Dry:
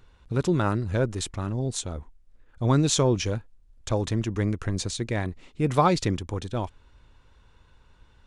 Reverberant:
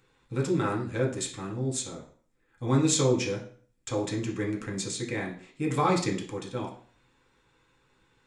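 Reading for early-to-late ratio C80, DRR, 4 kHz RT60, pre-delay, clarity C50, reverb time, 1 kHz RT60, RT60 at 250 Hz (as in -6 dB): 13.5 dB, -2.0 dB, 0.40 s, 3 ms, 8.5 dB, 0.50 s, 0.50 s, 0.45 s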